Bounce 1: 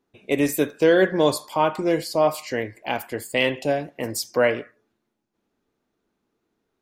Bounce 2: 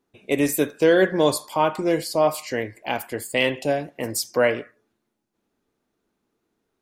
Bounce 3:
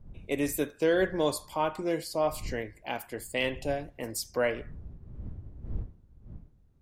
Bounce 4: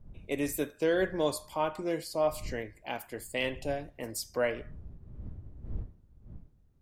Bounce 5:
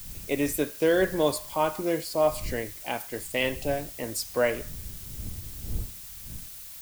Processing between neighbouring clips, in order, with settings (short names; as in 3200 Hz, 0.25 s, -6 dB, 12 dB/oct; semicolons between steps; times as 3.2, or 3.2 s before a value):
bell 10000 Hz +4 dB 0.96 oct
wind noise 87 Hz -35 dBFS; gain -8.5 dB
resonator 610 Hz, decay 0.41 s, mix 50%; gain +3.5 dB
added noise blue -48 dBFS; gain +5 dB